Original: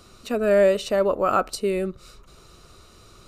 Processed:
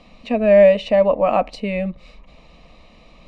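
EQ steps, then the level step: resonant low-pass 2.2 kHz, resonance Q 2.3; static phaser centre 380 Hz, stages 6; +7.0 dB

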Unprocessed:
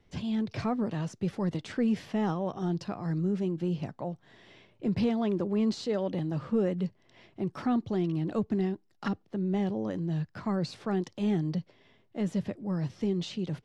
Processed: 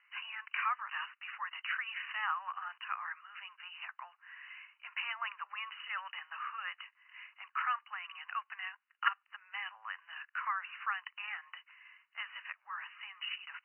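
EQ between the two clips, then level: steep high-pass 1.1 kHz 48 dB/octave; brick-wall FIR low-pass 3 kHz; +9.5 dB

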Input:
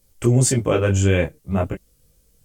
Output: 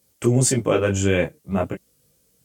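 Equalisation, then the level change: high-pass 130 Hz 12 dB/octave; 0.0 dB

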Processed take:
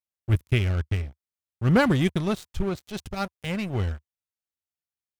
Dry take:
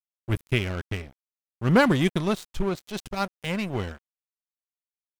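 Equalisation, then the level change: peaking EQ 77 Hz +12.5 dB 1.2 oct; band-stop 1 kHz, Q 17; -2.0 dB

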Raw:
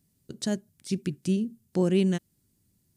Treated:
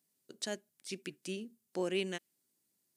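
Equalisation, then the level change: high-pass 420 Hz 12 dB/octave; dynamic bell 2.4 kHz, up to +6 dB, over -54 dBFS, Q 1.5; -5.0 dB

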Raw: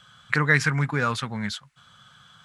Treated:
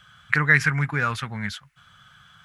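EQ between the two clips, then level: graphic EQ 125/250/500/1000/4000/8000 Hz -5/-9/-9/-7/-9/-10 dB; +7.5 dB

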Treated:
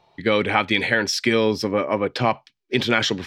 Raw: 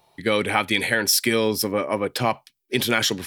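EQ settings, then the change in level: distance through air 180 m; treble shelf 4.9 kHz +6 dB; +2.5 dB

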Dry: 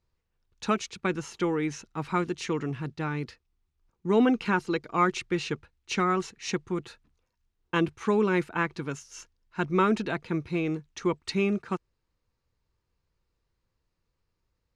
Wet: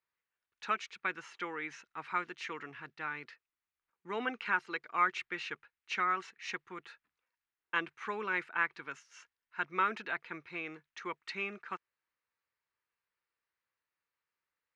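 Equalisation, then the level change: band-pass filter 1.8 kHz, Q 1.5; 0.0 dB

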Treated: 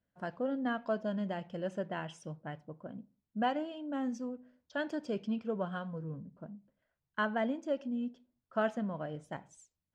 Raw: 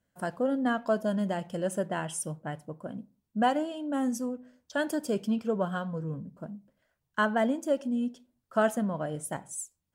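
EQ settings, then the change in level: dynamic bell 5.5 kHz, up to +5 dB, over -54 dBFS, Q 0.91; dynamic bell 2.4 kHz, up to +4 dB, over -51 dBFS, Q 1.7; distance through air 190 m; -6.0 dB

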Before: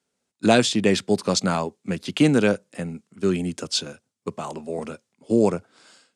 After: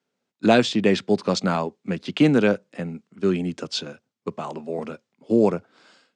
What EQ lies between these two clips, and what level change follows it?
high-pass 120 Hz 12 dB/octave; distance through air 120 m; +1.0 dB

